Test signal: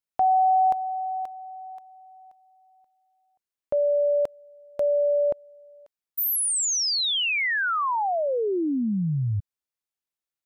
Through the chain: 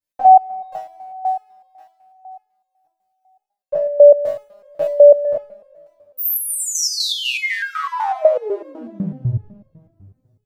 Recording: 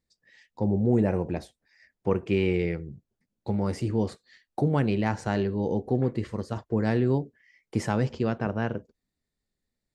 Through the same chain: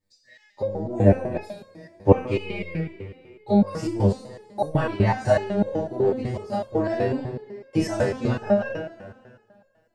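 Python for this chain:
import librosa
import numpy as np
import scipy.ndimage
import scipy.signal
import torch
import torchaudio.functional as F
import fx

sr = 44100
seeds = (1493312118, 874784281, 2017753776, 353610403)

y = fx.spec_trails(x, sr, decay_s=0.51)
y = fx.peak_eq(y, sr, hz=620.0, db=8.5, octaves=0.23)
y = fx.transient(y, sr, attack_db=6, sustain_db=-3)
y = fx.hum_notches(y, sr, base_hz=60, count=2)
y = fx.rev_double_slope(y, sr, seeds[0], early_s=0.25, late_s=2.4, knee_db=-20, drr_db=-6.5)
y = fx.resonator_held(y, sr, hz=8.0, low_hz=98.0, high_hz=540.0)
y = y * 10.0 ** (5.5 / 20.0)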